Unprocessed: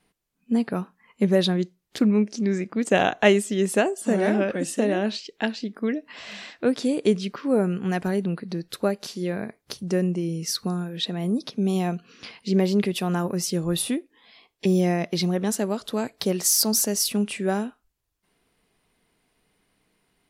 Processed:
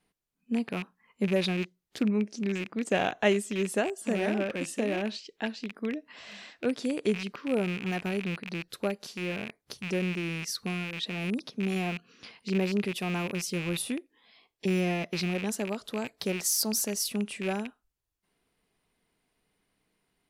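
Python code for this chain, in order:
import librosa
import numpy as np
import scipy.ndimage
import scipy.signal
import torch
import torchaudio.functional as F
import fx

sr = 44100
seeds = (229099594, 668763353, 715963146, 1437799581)

y = fx.rattle_buzz(x, sr, strikes_db=-37.0, level_db=-19.0)
y = F.gain(torch.from_numpy(y), -7.0).numpy()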